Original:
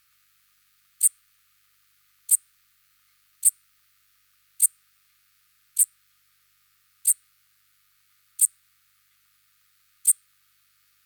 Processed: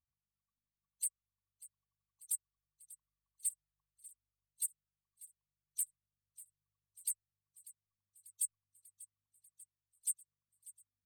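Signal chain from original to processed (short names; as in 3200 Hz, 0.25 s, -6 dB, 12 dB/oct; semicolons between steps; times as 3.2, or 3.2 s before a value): per-bin expansion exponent 3; limiter -19.5 dBFS, peak gain reduction 11.5 dB; thinning echo 0.592 s, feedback 66%, level -18.5 dB; gain -4 dB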